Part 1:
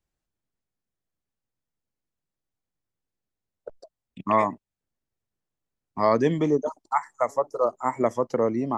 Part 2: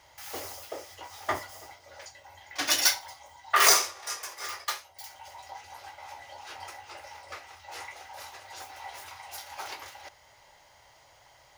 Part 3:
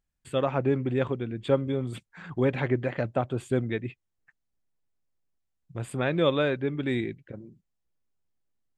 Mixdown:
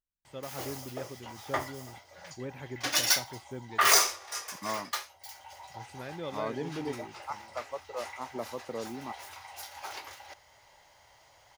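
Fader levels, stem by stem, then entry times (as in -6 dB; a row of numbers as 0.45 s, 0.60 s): -14.5 dB, -2.0 dB, -15.5 dB; 0.35 s, 0.25 s, 0.00 s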